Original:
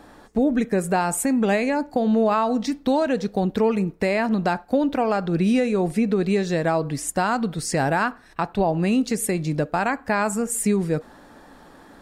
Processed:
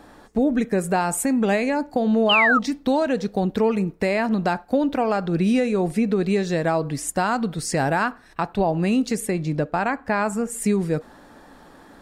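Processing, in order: 2.29–2.59 s: painted sound fall 1.2–3.2 kHz -18 dBFS; 9.20–10.62 s: treble shelf 5.1 kHz -8 dB

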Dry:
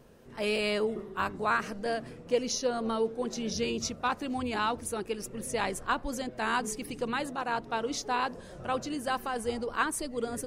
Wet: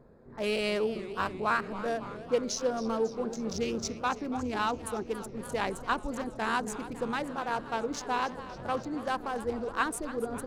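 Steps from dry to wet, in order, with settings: local Wiener filter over 15 samples; modulated delay 278 ms, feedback 73%, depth 168 cents, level -15 dB

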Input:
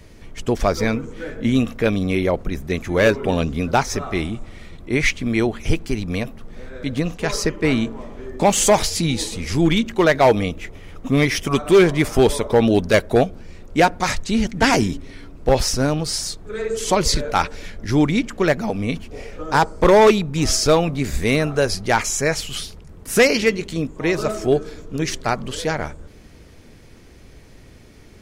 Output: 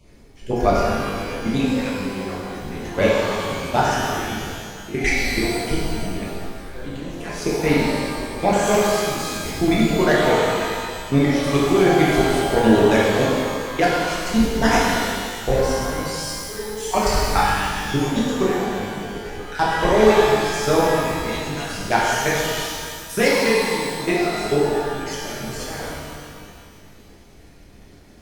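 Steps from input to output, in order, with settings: random holes in the spectrogram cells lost 23%; level held to a coarse grid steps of 17 dB; pitch-shifted reverb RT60 2 s, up +12 st, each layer -8 dB, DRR -7 dB; trim -3 dB

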